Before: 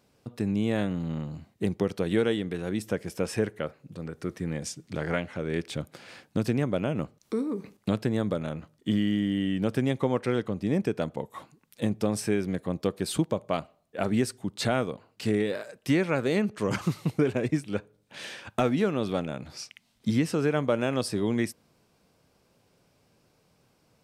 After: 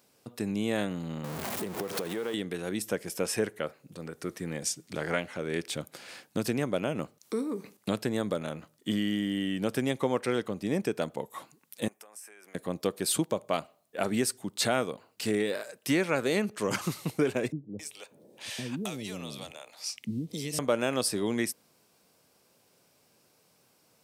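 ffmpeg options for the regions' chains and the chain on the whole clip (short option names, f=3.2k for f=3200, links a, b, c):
-filter_complex "[0:a]asettb=1/sr,asplit=3[a][b][c];[a]atrim=end=1.244[d];[b]atrim=start=1.24:end=2.34,asetpts=PTS-STARTPTS,afade=t=in:d=0.004:c=qsin,afade=t=out:st=1.096:d=0.004:c=qsin,aeval=exprs='val(0)+0.5*0.0237*sgn(val(0))':c=same,equalizer=f=760:t=o:w=2.9:g=7.5,acompressor=threshold=-29dB:ratio=6:attack=3.2:release=140:knee=1:detection=peak[e];[c]atrim=start=2.336[f];[d][e]acrossfade=d=0.004:c1=hsin:c2=qsin[g];[g][f]acrossfade=d=0.004:c1=qsin:c2=hsin,asettb=1/sr,asplit=3[h][i][j];[h]atrim=end=11.884[k];[i]atrim=start=11.88:end=12.55,asetpts=PTS-STARTPTS,afade=t=in:d=0.004:c=qsin,afade=t=out:st=0.666:d=0.004:c=qsin,highpass=960,equalizer=f=4k:t=o:w=0.84:g=-14.5,acompressor=threshold=-50dB:ratio=6:attack=3.2:release=140:knee=1:detection=peak[l];[j]atrim=start=12.546[m];[k][l]acrossfade=d=0.004:c1=hsin:c2=qsin[n];[n][m]acrossfade=d=0.004:c1=qsin:c2=hsin,asettb=1/sr,asplit=3[o][p][q];[o]atrim=end=17.524[r];[p]atrim=start=17.52:end=20.59,asetpts=PTS-STARTPTS,afade=t=in:d=0.004:c=qsin,afade=t=out:st=3.066:d=0.004:c=qsin,equalizer=f=1.5k:w=3.5:g=-7.5,acrossover=split=210|3000[s][t][u];[t]acompressor=threshold=-38dB:ratio=3:attack=3.2:release=140:knee=2.83:detection=peak[v];[s][v][u]amix=inputs=3:normalize=0,acrossover=split=510[w][x];[x]adelay=270[y];[w][y]amix=inputs=2:normalize=0,atrim=end_sample=135387[z];[q]atrim=start=20.586[aa];[r][z]acrossfade=d=0.004:c1=hsin:c2=qsin[ab];[ab][aa]acrossfade=d=0.004:c1=qsin:c2=hsin,highpass=f=270:p=1,highshelf=f=6.8k:g=11.5"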